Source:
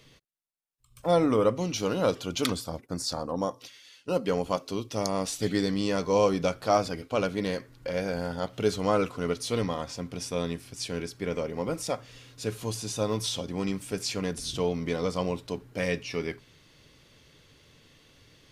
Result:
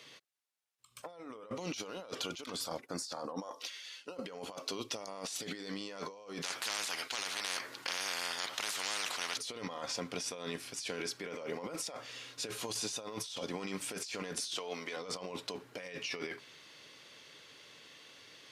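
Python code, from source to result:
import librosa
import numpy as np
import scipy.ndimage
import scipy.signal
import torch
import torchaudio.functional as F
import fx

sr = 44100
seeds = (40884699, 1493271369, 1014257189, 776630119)

y = fx.highpass(x, sr, hz=fx.line((3.42, 410.0), (4.13, 130.0)), slope=12, at=(3.42, 4.13), fade=0.02)
y = fx.spectral_comp(y, sr, ratio=10.0, at=(6.41, 9.36), fade=0.02)
y = fx.highpass(y, sr, hz=670.0, slope=6, at=(14.4, 14.97))
y = fx.weighting(y, sr, curve='A')
y = fx.over_compress(y, sr, threshold_db=-40.0, ratio=-1.0)
y = y * 10.0 ** (-1.5 / 20.0)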